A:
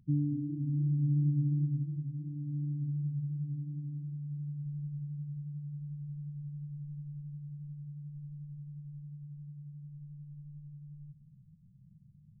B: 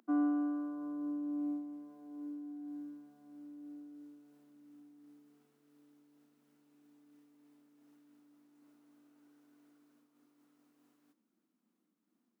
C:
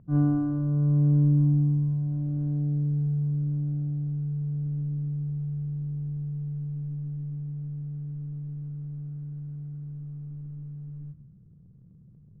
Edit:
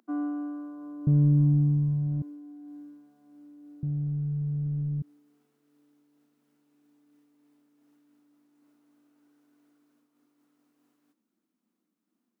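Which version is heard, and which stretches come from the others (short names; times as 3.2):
B
1.07–2.22 from C
3.83–5.02 from C
not used: A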